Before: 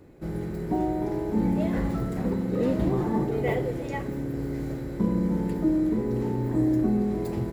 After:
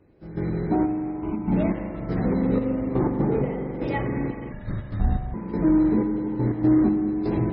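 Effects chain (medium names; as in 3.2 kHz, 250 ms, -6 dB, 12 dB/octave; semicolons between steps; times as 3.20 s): 2.97–3.75 s: treble shelf 2.4 kHz -9 dB; in parallel at -3 dB: saturation -25.5 dBFS, distortion -11 dB; 0.83–1.52 s: on the sum: static phaser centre 2.6 kHz, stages 8; trance gate "...xxxx...x.xx" 122 bpm -12 dB; spring tank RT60 4 s, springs 42 ms, chirp 55 ms, DRR 4 dB; Chebyshev shaper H 4 -26 dB, 6 -26 dB, 8 -40 dB, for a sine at -10.5 dBFS; 4.52–5.34 s: frequency shift -250 Hz; trim +1 dB; MP3 16 kbps 22.05 kHz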